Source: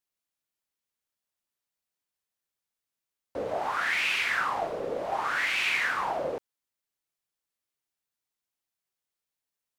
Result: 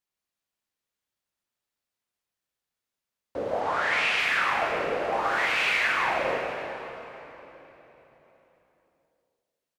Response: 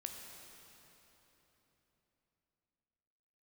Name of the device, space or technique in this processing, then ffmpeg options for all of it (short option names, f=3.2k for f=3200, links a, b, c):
cave: -filter_complex "[0:a]aecho=1:1:178:0.299[a];[1:a]atrim=start_sample=2205[b];[a][b]afir=irnorm=-1:irlink=0,asettb=1/sr,asplit=3[c][d][e];[c]atrim=end=3.604[f];[d]atrim=start=3.6:end=4.19,asetpts=PTS-STARTPTS,afade=t=in:d=0.004:c=qsin,afade=t=out:st=0.586:d=0.004:c=qsin,lowpass=9.8k[g];[e]atrim=start=4.186[h];[f][g]acrossfade=d=0.004:c1=hsin:c2=qsin[i];[i][h]acrossfade=d=0.004:c1=qsin:c2=hsin,highshelf=f=6.9k:g=-6.5,volume=5.5dB"